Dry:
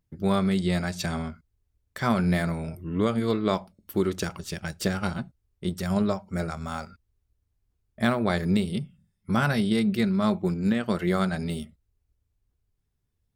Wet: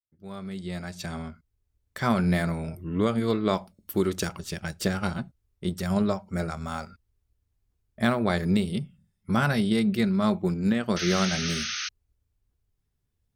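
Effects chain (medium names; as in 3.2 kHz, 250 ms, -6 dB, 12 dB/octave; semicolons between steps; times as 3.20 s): fade-in on the opening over 1.99 s; 3.57–4.30 s: treble shelf 5.1 kHz +5 dB; 10.96–11.89 s: painted sound noise 1.2–6.5 kHz -32 dBFS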